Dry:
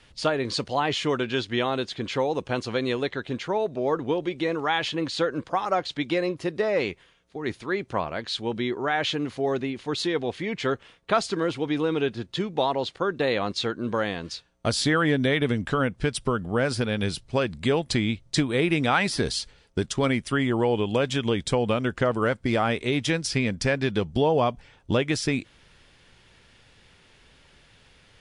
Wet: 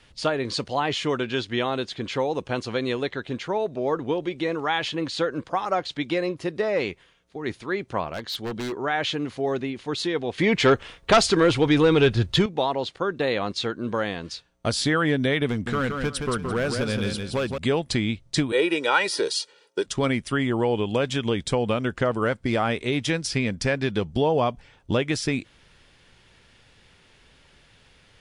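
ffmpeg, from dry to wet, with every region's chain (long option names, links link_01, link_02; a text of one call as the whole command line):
ffmpeg -i in.wav -filter_complex "[0:a]asettb=1/sr,asplit=3[link_01][link_02][link_03];[link_01]atrim=end=8.134[link_04];[link_02]atrim=start=8.13:end=8.73,asetpts=PTS-STARTPTS,afade=type=in:duration=0.004:curve=qsin,afade=type=out:start_time=0.596:duration=0.004:curve=qsin,bandreject=frequency=2500:width=5.9,aeval=exprs='0.0631*(abs(mod(val(0)/0.0631+3,4)-2)-1)':channel_layout=same[link_05];[link_03]atrim=start=8.726[link_06];[link_04][link_05]acrossfade=duration=0.004:curve1=hsin:curve2=qsin[link_07];[link_07][link_06]acrossfade=duration=0.004:curve1=qsin:curve2=hsin,asettb=1/sr,asplit=3[link_08][link_09][link_10];[link_08]atrim=end=10.384[link_11];[link_09]atrim=start=10.38:end=12.46,asetpts=PTS-STARTPTS,afade=type=in:duration=0.004:curve=qsin,afade=type=out:start_time=2.076:duration=0.004:curve=qsin,asubboost=boost=12:cutoff=85,aeval=exprs='0.316*sin(PI/2*2*val(0)/0.316)':channel_layout=same[link_12];[link_10]atrim=start=12.456[link_13];[link_11][link_12]acrossfade=duration=0.004:curve1=hsin:curve2=qsin[link_14];[link_14][link_13]acrossfade=duration=0.004:curve1=qsin:curve2=hsin,asettb=1/sr,asplit=3[link_15][link_16][link_17];[link_15]atrim=end=15.494[link_18];[link_16]atrim=start=15.49:end=17.58,asetpts=PTS-STARTPTS,afade=type=in:duration=0.004:curve=qsin,afade=type=out:start_time=2.086:duration=0.004:curve=qsin,asoftclip=type=hard:threshold=-19.5dB,aecho=1:1:170|340|510:0.562|0.146|0.038,atrim=end_sample=92169[link_19];[link_17]atrim=start=17.576[link_20];[link_18][link_19]acrossfade=duration=0.004:curve1=hsin:curve2=qsin[link_21];[link_21][link_20]acrossfade=duration=0.004:curve1=qsin:curve2=hsin,asettb=1/sr,asplit=3[link_22][link_23][link_24];[link_22]atrim=end=18.524[link_25];[link_23]atrim=start=18.52:end=19.86,asetpts=PTS-STARTPTS,afade=type=in:duration=0.004:curve=qsin,afade=type=out:start_time=1.336:duration=0.004:curve=qsin,highpass=frequency=250:width=0.5412,highpass=frequency=250:width=1.3066,bandreject=frequency=2100:width=10,aecho=1:1:2.1:0.74,atrim=end_sample=59094[link_26];[link_24]atrim=start=19.856[link_27];[link_25][link_26]acrossfade=duration=0.004:curve1=hsin:curve2=qsin[link_28];[link_28][link_27]acrossfade=duration=0.004:curve1=qsin:curve2=hsin" out.wav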